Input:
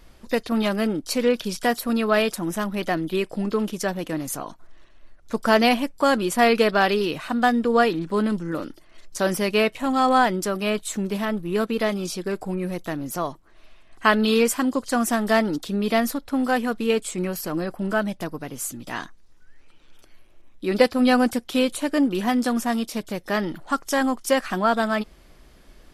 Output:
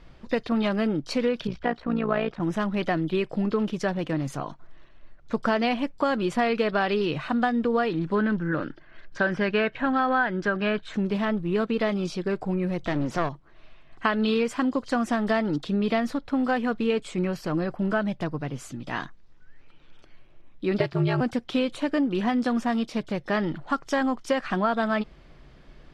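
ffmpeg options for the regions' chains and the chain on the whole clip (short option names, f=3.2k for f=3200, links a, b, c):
-filter_complex "[0:a]asettb=1/sr,asplit=3[a][b][c];[a]atrim=end=1.474[d];[b]atrim=start=1.47:end=2.4,asetpts=PTS-STARTPTS,afade=t=in:d=0.004:c=qsin,afade=t=out:st=0.926:d=0.004:c=qsin,lowpass=2.5k,tremolo=f=58:d=0.71[e];[c]atrim=start=2.396[f];[d][e]acrossfade=d=0.004:c1=hsin:c2=qsin[g];[g][f]acrossfade=d=0.004:c1=qsin:c2=hsin,asettb=1/sr,asplit=3[h][i][j];[h]atrim=end=8.154[k];[i]atrim=start=8.15:end=10.94,asetpts=PTS-STARTPTS,afade=t=in:d=0.004:c=qsin,afade=t=out:st=2.786:d=0.004:c=qsin,lowpass=4k,equalizer=f=1.6k:w=5.6:g=14.5[l];[j]atrim=start=10.936[m];[k][l]acrossfade=d=0.004:c1=hsin:c2=qsin[n];[n][m]acrossfade=d=0.004:c1=qsin:c2=hsin,asettb=1/sr,asplit=3[o][p][q];[o]atrim=end=12.834[r];[p]atrim=start=12.83:end=13.29,asetpts=PTS-STARTPTS,afade=t=in:d=0.004:c=qsin,afade=t=out:st=0.456:d=0.004:c=qsin,lowpass=8k,acontrast=69,aeval=exprs='clip(val(0),-1,0.0282)':c=same[s];[q]atrim=start=13.286[t];[r][s]acrossfade=d=0.004:c1=hsin:c2=qsin[u];[u][t]acrossfade=d=0.004:c1=qsin:c2=hsin,asettb=1/sr,asplit=3[v][w][x];[v]atrim=end=20.794[y];[w]atrim=start=20.79:end=21.21,asetpts=PTS-STARTPTS,afade=t=in:d=0.004:c=qsin,afade=t=out:st=0.416:d=0.004:c=qsin,equalizer=f=2.3k:w=1.5:g=3,acrusher=bits=7:mix=0:aa=0.5,aeval=exprs='val(0)*sin(2*PI*97*n/s)':c=same[z];[x]atrim=start=21.206[aa];[y][z]acrossfade=d=0.004:c1=hsin:c2=qsin[ab];[ab][aa]acrossfade=d=0.004:c1=qsin:c2=hsin,lowpass=3.8k,equalizer=f=140:t=o:w=0.41:g=8.5,acompressor=threshold=-20dB:ratio=6"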